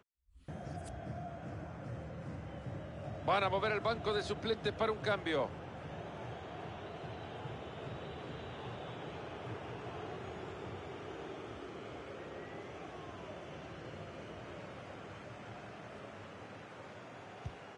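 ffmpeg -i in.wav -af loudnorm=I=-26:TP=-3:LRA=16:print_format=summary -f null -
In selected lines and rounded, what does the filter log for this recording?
Input Integrated:    -42.3 LUFS
Input True Peak:     -21.6 dBTP
Input LRA:            12.9 LU
Input Threshold:     -52.4 LUFS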